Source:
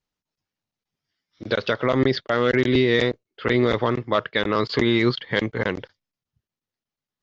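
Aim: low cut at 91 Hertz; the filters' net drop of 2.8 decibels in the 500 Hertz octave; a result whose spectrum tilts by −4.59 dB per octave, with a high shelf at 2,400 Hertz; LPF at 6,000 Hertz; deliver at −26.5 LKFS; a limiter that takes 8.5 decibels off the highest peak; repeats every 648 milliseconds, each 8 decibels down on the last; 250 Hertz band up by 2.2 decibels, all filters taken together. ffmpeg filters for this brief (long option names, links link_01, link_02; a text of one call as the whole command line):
ffmpeg -i in.wav -af "highpass=91,lowpass=6000,equalizer=frequency=250:width_type=o:gain=4.5,equalizer=frequency=500:width_type=o:gain=-5.5,highshelf=frequency=2400:gain=-3.5,alimiter=limit=-16dB:level=0:latency=1,aecho=1:1:648|1296|1944|2592|3240:0.398|0.159|0.0637|0.0255|0.0102,volume=1dB" out.wav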